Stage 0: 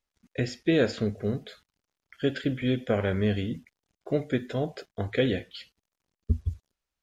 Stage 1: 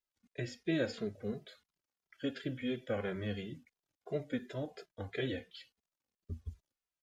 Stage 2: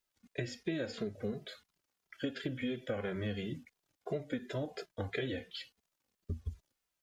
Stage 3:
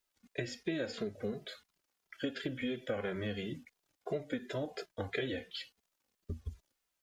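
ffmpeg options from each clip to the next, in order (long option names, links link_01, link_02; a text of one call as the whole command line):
ffmpeg -i in.wav -filter_complex "[0:a]lowshelf=frequency=110:gain=-9.5,asplit=2[link_01][link_02];[link_02]adelay=2.5,afreqshift=-2.9[link_03];[link_01][link_03]amix=inputs=2:normalize=1,volume=-6dB" out.wav
ffmpeg -i in.wav -af "acompressor=threshold=-41dB:ratio=6,volume=7.5dB" out.wav
ffmpeg -i in.wav -af "equalizer=frequency=110:width_type=o:width=2.1:gain=-4.5,volume=1.5dB" out.wav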